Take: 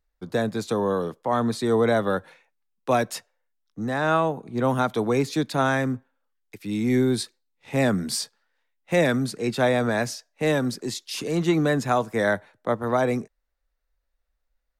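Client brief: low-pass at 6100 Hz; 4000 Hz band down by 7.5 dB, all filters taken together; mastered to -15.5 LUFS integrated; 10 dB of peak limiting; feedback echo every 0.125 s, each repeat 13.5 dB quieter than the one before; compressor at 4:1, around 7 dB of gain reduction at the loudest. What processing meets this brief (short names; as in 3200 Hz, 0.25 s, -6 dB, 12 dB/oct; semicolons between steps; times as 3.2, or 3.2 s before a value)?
LPF 6100 Hz; bell 4000 Hz -8 dB; compressor 4:1, threshold -25 dBFS; limiter -24.5 dBFS; feedback echo 0.125 s, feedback 21%, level -13.5 dB; gain +18.5 dB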